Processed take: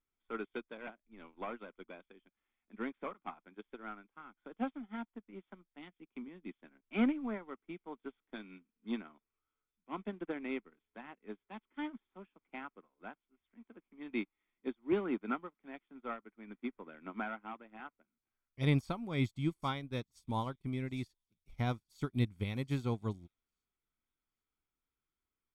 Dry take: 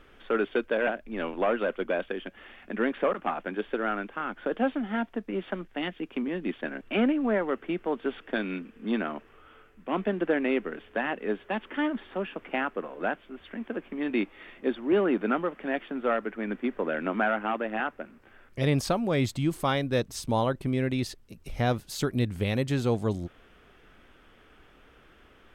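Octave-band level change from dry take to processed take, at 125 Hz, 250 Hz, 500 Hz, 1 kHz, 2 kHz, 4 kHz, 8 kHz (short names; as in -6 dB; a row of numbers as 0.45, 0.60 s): -6.5 dB, -10.0 dB, -15.5 dB, -12.0 dB, -14.0 dB, -11.5 dB, under -20 dB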